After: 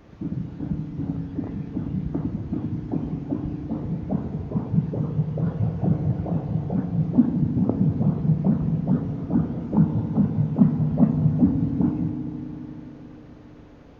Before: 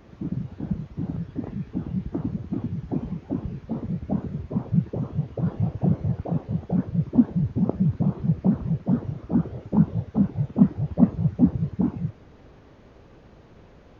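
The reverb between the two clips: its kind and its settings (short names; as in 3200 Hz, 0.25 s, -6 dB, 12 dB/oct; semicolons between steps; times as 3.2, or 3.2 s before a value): FDN reverb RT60 4 s, high-frequency decay 0.3×, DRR 5.5 dB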